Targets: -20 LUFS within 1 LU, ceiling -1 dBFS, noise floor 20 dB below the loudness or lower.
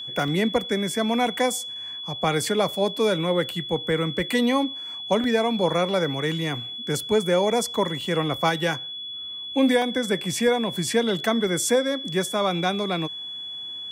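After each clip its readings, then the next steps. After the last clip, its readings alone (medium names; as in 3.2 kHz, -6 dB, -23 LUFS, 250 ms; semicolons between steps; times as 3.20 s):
dropouts 4; longest dropout 1.5 ms; steady tone 3.4 kHz; tone level -32 dBFS; loudness -24.0 LUFS; peak level -10.0 dBFS; loudness target -20.0 LUFS
-> interpolate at 0.28/5.24/8.01/9.82 s, 1.5 ms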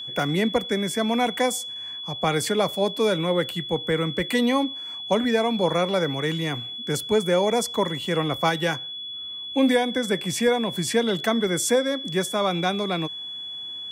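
dropouts 0; steady tone 3.4 kHz; tone level -32 dBFS
-> band-stop 3.4 kHz, Q 30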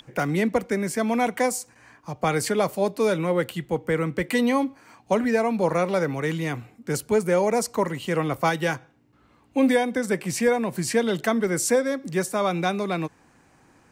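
steady tone not found; loudness -24.5 LUFS; peak level -10.5 dBFS; loudness target -20.0 LUFS
-> trim +4.5 dB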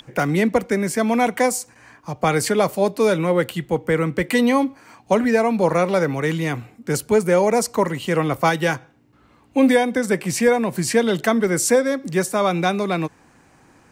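loudness -20.0 LUFS; peak level -6.0 dBFS; noise floor -54 dBFS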